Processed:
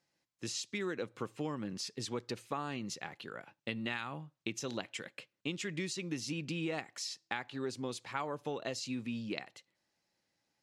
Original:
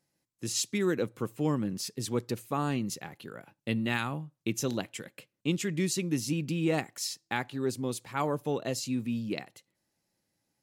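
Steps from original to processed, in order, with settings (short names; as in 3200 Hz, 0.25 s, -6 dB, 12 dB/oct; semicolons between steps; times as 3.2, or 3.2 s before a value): low shelf 440 Hz -10 dB; compressor, threshold -36 dBFS, peak gain reduction 9.5 dB; LPF 5600 Hz 12 dB/oct; gain +2.5 dB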